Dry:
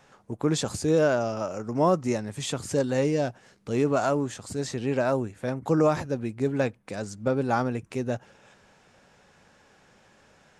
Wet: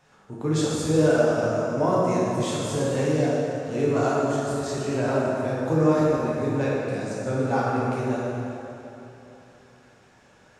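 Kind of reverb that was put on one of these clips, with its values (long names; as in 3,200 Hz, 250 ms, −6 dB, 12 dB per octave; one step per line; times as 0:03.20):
dense smooth reverb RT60 3.2 s, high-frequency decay 0.65×, DRR −7 dB
level −5.5 dB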